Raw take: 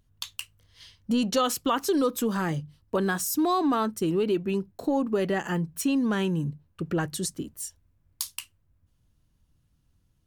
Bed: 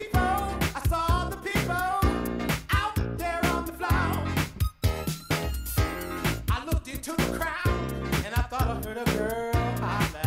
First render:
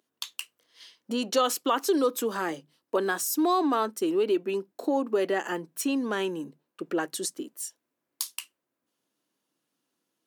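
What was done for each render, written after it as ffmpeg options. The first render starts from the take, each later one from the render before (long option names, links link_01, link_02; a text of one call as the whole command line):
ffmpeg -i in.wav -af "highpass=frequency=300:width=0.5412,highpass=frequency=300:width=1.3066,lowshelf=frequency=420:gain=3" out.wav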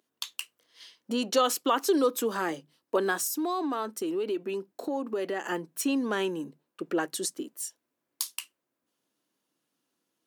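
ffmpeg -i in.wav -filter_complex "[0:a]asettb=1/sr,asplit=3[link_01][link_02][link_03];[link_01]atrim=end=3.274[link_04];[link_02]atrim=start=3.27:end=5.48,asetpts=PTS-STARTPTS,afade=type=in:duration=0.004:curve=qsin,afade=type=out:start_time=2.206:duration=0.004:curve=qsin,acompressor=threshold=-31dB:ratio=2:attack=3.2:release=140:knee=1:detection=peak[link_05];[link_03]atrim=start=5.476[link_06];[link_04][link_05]acrossfade=duration=0.004:curve1=hsin:curve2=qsin[link_07];[link_07][link_06]acrossfade=duration=0.004:curve1=qsin:curve2=hsin" out.wav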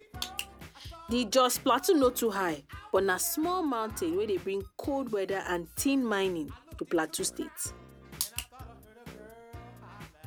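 ffmpeg -i in.wav -i bed.wav -filter_complex "[1:a]volume=-21dB[link_01];[0:a][link_01]amix=inputs=2:normalize=0" out.wav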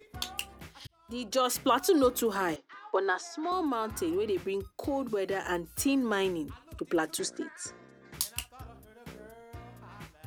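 ffmpeg -i in.wav -filter_complex "[0:a]asettb=1/sr,asplit=3[link_01][link_02][link_03];[link_01]atrim=end=2.564[link_04];[link_02]atrim=start=2.56:end=3.52,asetpts=PTS-STARTPTS,afade=type=in:duration=0.004:curve=qsin,afade=type=out:start_time=0.956:duration=0.004:curve=qsin,highpass=frequency=320:width=0.5412,highpass=frequency=320:width=1.3066,equalizer=frequency=330:width_type=q:width=4:gain=-3,equalizer=frequency=580:width_type=q:width=4:gain=-4,equalizer=frequency=840:width_type=q:width=4:gain=4,equalizer=frequency=2700:width_type=q:width=4:gain=-9,equalizer=frequency=4500:width_type=q:width=4:gain=-4,lowpass=frequency=5200:width=0.5412,lowpass=frequency=5200:width=1.3066[link_05];[link_03]atrim=start=3.516[link_06];[link_04][link_05]acrossfade=duration=0.004:curve1=hsin:curve2=qsin[link_07];[link_07][link_06]acrossfade=duration=0.004:curve1=qsin:curve2=hsin,asettb=1/sr,asplit=3[link_08][link_09][link_10];[link_08]atrim=end=7.194[link_11];[link_09]atrim=start=7.19:end=8.14,asetpts=PTS-STARTPTS,afade=type=in:duration=0.004:curve=qsin,afade=type=out:start_time=0.946:duration=0.004:curve=qsin,highpass=190,equalizer=frequency=1200:width_type=q:width=4:gain=-4,equalizer=frequency=1700:width_type=q:width=4:gain=8,equalizer=frequency=2900:width_type=q:width=4:gain=-9,lowpass=frequency=7600:width=0.5412,lowpass=frequency=7600:width=1.3066[link_12];[link_10]atrim=start=8.136[link_13];[link_11][link_12]acrossfade=duration=0.004:curve1=hsin:curve2=qsin[link_14];[link_14][link_13]acrossfade=duration=0.004:curve1=qsin:curve2=hsin,asplit=2[link_15][link_16];[link_15]atrim=end=0.87,asetpts=PTS-STARTPTS,afade=type=out:start_time=0.866:duration=0.004:curve=hsin[link_17];[link_16]atrim=start=0.87,asetpts=PTS-STARTPTS,afade=type=in:duration=0.8[link_18];[link_17][link_18]concat=n=2:v=0:a=1" out.wav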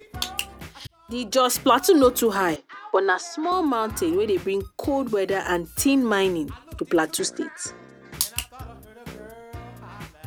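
ffmpeg -i in.wav -af "volume=8dB" out.wav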